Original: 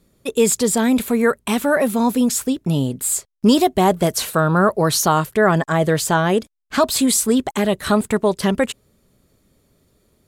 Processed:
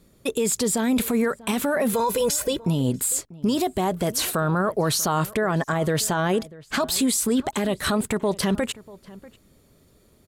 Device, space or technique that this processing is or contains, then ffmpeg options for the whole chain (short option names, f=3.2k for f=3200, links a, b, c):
stacked limiters: -filter_complex "[0:a]asettb=1/sr,asplit=3[a][b][c];[a]atrim=end=1.934[d];[b]atrim=start=1.93:end=2.6,asetpts=PTS-STARTPTS,afade=t=in:d=0.004:c=qsin,afade=t=out:st=0.666:d=0.004:c=qsin,aecho=1:1:2:0.94,atrim=end_sample=29547[e];[c]atrim=start=2.596[f];[d][e]acrossfade=d=0.004:c1=hsin:c2=qsin[g];[g][f]acrossfade=d=0.004:c1=qsin:c2=hsin,alimiter=limit=-10.5dB:level=0:latency=1:release=158,alimiter=limit=-17dB:level=0:latency=1:release=32,asplit=2[h][i];[i]adelay=641.4,volume=-20dB,highshelf=f=4k:g=-14.4[j];[h][j]amix=inputs=2:normalize=0,volume=2.5dB"